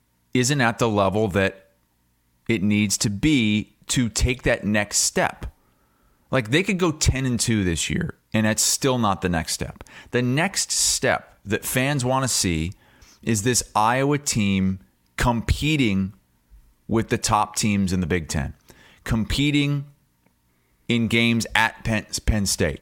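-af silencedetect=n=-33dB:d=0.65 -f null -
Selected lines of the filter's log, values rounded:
silence_start: 1.52
silence_end: 2.49 | silence_duration: 0.97
silence_start: 5.48
silence_end: 6.32 | silence_duration: 0.84
silence_start: 16.10
silence_end: 16.89 | silence_duration: 0.79
silence_start: 19.83
silence_end: 20.89 | silence_duration: 1.07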